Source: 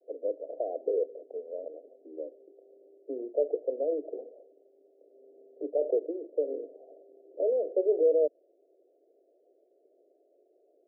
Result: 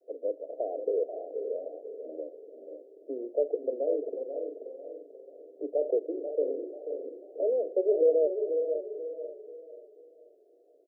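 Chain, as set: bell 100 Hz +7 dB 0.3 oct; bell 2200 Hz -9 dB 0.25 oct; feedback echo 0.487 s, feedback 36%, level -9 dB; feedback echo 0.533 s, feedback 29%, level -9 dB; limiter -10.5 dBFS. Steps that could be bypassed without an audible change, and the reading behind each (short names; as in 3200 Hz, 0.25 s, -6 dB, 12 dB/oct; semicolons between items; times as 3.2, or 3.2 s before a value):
bell 100 Hz: input band starts at 240 Hz; bell 2200 Hz: input band ends at 760 Hz; limiter -10.5 dBFS: input peak -14.0 dBFS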